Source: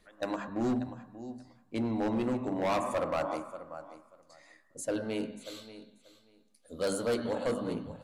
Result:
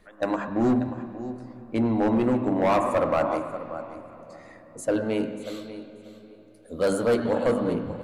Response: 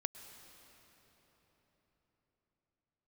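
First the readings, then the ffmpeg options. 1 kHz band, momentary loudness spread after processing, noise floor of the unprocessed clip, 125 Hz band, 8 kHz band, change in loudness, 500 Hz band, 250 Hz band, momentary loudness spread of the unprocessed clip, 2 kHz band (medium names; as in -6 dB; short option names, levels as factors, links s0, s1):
+8.0 dB, 18 LU, -66 dBFS, +8.5 dB, +1.0 dB, +8.0 dB, +8.5 dB, +8.5 dB, 16 LU, +7.0 dB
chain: -filter_complex "[0:a]asplit=2[s0][s1];[1:a]atrim=start_sample=2205,lowpass=2800[s2];[s1][s2]afir=irnorm=-1:irlink=0,volume=1.26[s3];[s0][s3]amix=inputs=2:normalize=0,volume=1.26"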